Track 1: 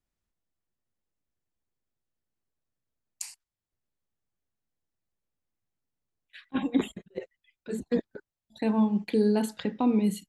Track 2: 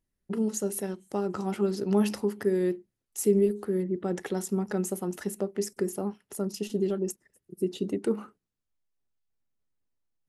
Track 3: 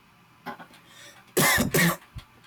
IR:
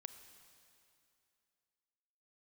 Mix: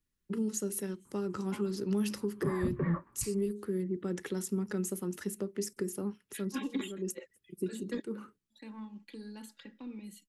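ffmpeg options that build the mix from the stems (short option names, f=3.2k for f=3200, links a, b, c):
-filter_complex "[0:a]highpass=f=470:p=1,aecho=1:1:3.6:0.58,asoftclip=type=tanh:threshold=-20.5dB,volume=-2.5dB,afade=t=out:st=7.9:d=0.72:silence=0.281838,asplit=2[a][b];[1:a]volume=-2.5dB[c];[2:a]lowpass=f=1.2k:w=0.5412,lowpass=f=1.2k:w=1.3066,adelay=1050,volume=-4.5dB[d];[b]apad=whole_len=453687[e];[c][e]sidechaincompress=threshold=-47dB:ratio=5:attack=11:release=197[f];[a][f][d]amix=inputs=3:normalize=0,equalizer=f=710:t=o:w=0.63:g=-14,acrossover=split=160|3000[g][h][i];[h]acompressor=threshold=-30dB:ratio=6[j];[g][j][i]amix=inputs=3:normalize=0"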